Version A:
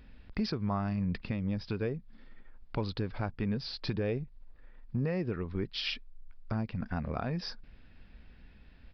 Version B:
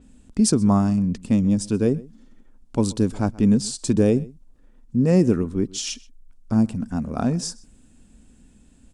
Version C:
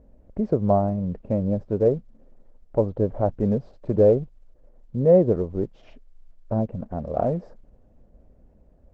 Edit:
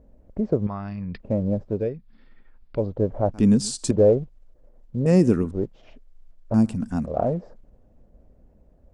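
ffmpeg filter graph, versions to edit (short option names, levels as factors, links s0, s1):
-filter_complex "[0:a]asplit=2[s0][s1];[1:a]asplit=3[s2][s3][s4];[2:a]asplit=6[s5][s6][s7][s8][s9][s10];[s5]atrim=end=0.672[s11];[s0]atrim=start=0.668:end=1.202[s12];[s6]atrim=start=1.198:end=1.94[s13];[s1]atrim=start=1.7:end=2.9[s14];[s7]atrim=start=2.66:end=3.342[s15];[s2]atrim=start=3.338:end=3.912[s16];[s8]atrim=start=3.908:end=5.062[s17];[s3]atrim=start=5.058:end=5.512[s18];[s9]atrim=start=5.508:end=6.542[s19];[s4]atrim=start=6.538:end=7.062[s20];[s10]atrim=start=7.058[s21];[s11][s12]acrossfade=d=0.004:c1=hsin:c2=hsin[s22];[s22][s13]acrossfade=d=0.004:c1=hsin:c2=hsin[s23];[s23][s14]acrossfade=d=0.24:c1=tri:c2=tri[s24];[s24][s15]acrossfade=d=0.24:c1=tri:c2=tri[s25];[s25][s16]acrossfade=d=0.004:c1=hsin:c2=hsin[s26];[s26][s17]acrossfade=d=0.004:c1=hsin:c2=hsin[s27];[s27][s18]acrossfade=d=0.004:c1=hsin:c2=hsin[s28];[s28][s19]acrossfade=d=0.004:c1=hsin:c2=hsin[s29];[s29][s20]acrossfade=d=0.004:c1=hsin:c2=hsin[s30];[s30][s21]acrossfade=d=0.004:c1=hsin:c2=hsin"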